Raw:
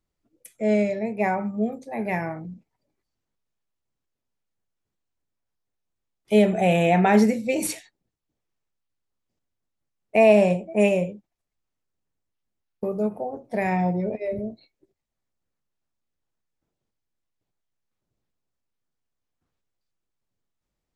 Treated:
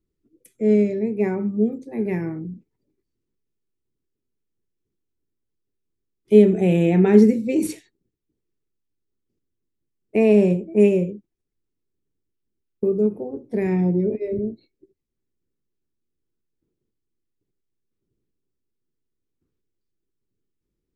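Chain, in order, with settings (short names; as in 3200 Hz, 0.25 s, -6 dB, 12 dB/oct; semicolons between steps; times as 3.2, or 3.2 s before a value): resonant low shelf 510 Hz +9 dB, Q 3; gain -6 dB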